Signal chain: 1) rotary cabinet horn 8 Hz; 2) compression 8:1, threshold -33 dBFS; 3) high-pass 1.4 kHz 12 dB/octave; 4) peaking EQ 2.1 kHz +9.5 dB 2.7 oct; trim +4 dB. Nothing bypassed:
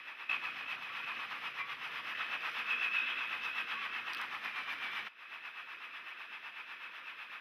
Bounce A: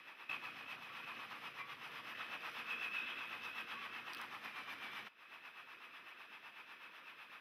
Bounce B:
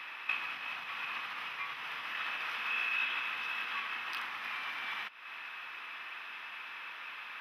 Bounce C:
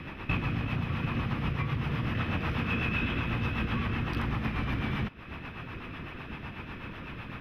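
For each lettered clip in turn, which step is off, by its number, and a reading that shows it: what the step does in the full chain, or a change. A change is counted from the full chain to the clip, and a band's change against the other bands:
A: 4, 250 Hz band +6.5 dB; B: 1, crest factor change +1.5 dB; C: 3, 250 Hz band +27.5 dB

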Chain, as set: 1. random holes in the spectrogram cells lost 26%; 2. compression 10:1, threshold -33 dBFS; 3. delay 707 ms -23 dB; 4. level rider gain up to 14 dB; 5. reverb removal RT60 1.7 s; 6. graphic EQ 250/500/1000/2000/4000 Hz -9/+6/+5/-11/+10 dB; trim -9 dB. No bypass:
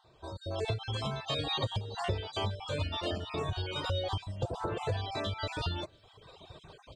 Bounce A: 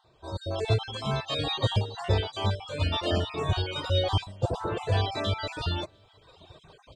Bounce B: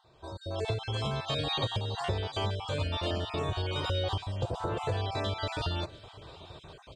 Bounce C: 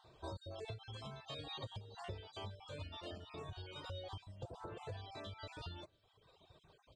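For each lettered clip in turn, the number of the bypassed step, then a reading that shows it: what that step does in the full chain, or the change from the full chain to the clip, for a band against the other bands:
2, mean gain reduction 5.5 dB; 5, momentary loudness spread change +4 LU; 4, momentary loudness spread change -5 LU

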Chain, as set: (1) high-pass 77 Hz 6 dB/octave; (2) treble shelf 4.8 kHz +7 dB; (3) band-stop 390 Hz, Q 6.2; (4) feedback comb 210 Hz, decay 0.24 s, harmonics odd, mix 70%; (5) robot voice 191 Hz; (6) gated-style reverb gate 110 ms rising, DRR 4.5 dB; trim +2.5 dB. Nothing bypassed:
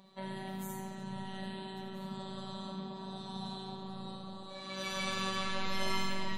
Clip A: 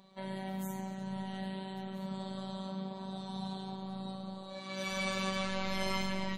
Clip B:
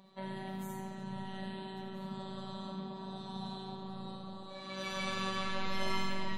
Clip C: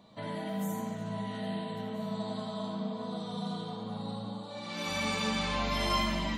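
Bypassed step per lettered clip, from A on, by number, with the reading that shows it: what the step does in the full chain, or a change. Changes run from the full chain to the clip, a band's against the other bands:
6, momentary loudness spread change -1 LU; 2, 8 kHz band -4.5 dB; 5, 250 Hz band +2.5 dB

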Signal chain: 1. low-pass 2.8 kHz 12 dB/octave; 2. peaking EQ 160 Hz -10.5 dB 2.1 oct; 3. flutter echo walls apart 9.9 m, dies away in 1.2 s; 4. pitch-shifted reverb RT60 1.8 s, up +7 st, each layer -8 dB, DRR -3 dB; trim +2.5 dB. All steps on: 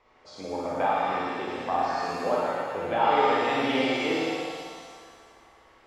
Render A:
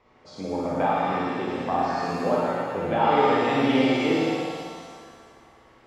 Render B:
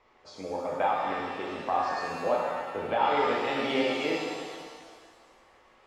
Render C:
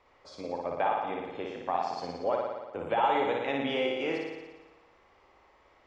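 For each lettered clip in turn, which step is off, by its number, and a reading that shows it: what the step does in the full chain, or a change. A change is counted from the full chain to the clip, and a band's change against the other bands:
2, 125 Hz band +8.5 dB; 3, loudness change -2.5 LU; 4, loudness change -4.5 LU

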